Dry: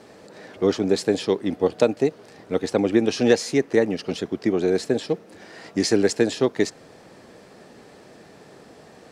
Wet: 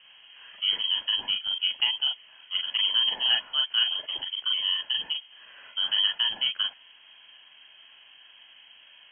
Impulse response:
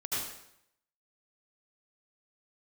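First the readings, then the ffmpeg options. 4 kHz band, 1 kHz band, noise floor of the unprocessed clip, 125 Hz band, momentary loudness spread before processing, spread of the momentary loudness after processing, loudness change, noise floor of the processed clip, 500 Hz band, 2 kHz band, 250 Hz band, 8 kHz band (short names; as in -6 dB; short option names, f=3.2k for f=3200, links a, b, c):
+13.0 dB, -9.0 dB, -49 dBFS, under -30 dB, 8 LU, 8 LU, -2.5 dB, -55 dBFS, under -30 dB, -2.5 dB, under -35 dB, under -40 dB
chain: -filter_complex "[1:a]atrim=start_sample=2205,atrim=end_sample=3528,asetrate=79380,aresample=44100[a];[0:a][a]afir=irnorm=-1:irlink=0,lowpass=f=2.9k:t=q:w=0.5098,lowpass=f=2.9k:t=q:w=0.6013,lowpass=f=2.9k:t=q:w=0.9,lowpass=f=2.9k:t=q:w=2.563,afreqshift=-3400,volume=1.5dB"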